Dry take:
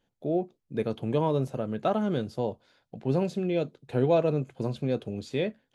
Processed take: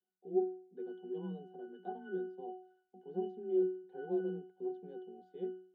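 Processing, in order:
frequency shifter +28 Hz
four-pole ladder high-pass 250 Hz, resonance 40%
resonances in every octave F#, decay 0.49 s
level +10.5 dB

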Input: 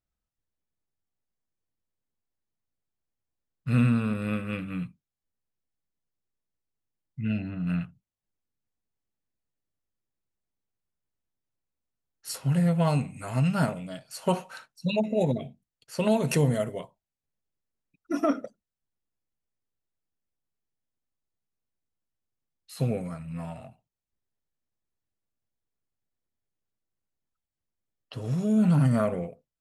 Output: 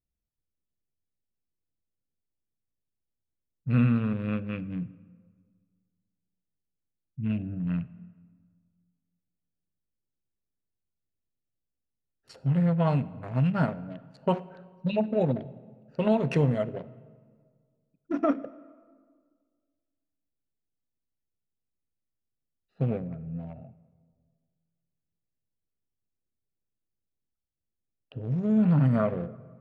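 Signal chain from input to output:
adaptive Wiener filter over 41 samples
low-pass filter 1,100 Hz 12 dB per octave, from 0:03.70 2,800 Hz
convolution reverb RT60 1.8 s, pre-delay 28 ms, DRR 17.5 dB

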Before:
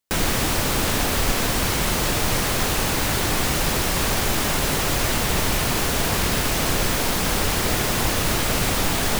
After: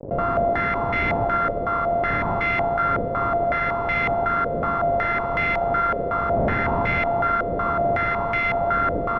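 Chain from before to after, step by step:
samples sorted by size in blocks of 64 samples
wind on the microphone 150 Hz −24 dBFS
low-shelf EQ 170 Hz −10 dB
fuzz pedal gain 25 dB, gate −33 dBFS
high-frequency loss of the air 97 metres
single-tap delay 285 ms −6 dB
low-pass on a step sequencer 5.4 Hz 540–2,200 Hz
level −8 dB

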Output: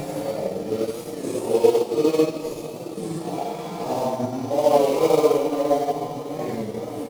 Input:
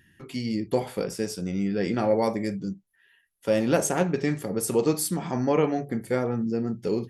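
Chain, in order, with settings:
gap after every zero crossing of 0.13 ms
graphic EQ with 15 bands 630 Hz +8 dB, 1,600 Hz −8 dB, 10,000 Hz +3 dB
single-tap delay 406 ms −16.5 dB
four-comb reverb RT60 1.8 s, combs from 33 ms, DRR 7 dB
extreme stretch with random phases 4.2×, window 0.10 s, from 0:04.38
dynamic equaliser 160 Hz, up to −8 dB, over −36 dBFS, Q 0.72
transient designer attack +4 dB, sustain −5 dB
wow of a warped record 33 1/3 rpm, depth 100 cents
level +1.5 dB

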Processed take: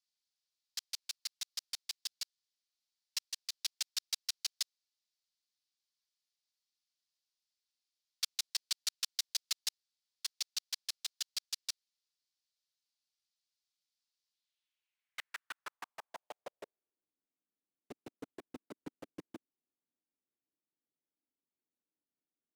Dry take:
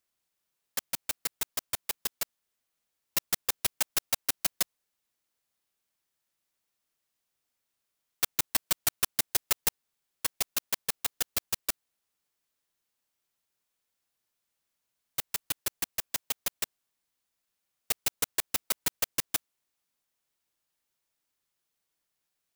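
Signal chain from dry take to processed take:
0:03.18–0:03.59: wrap-around overflow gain 22 dB
band-pass filter sweep 4,600 Hz → 280 Hz, 0:14.28–0:17.23
level +1 dB

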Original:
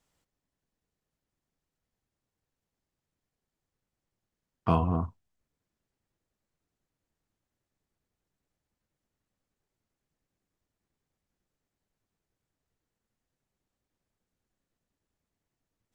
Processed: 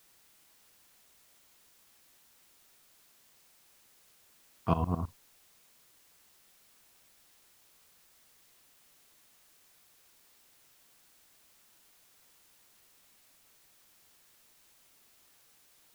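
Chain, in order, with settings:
shaped tremolo saw up 9.5 Hz, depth 90%
background noise white −64 dBFS

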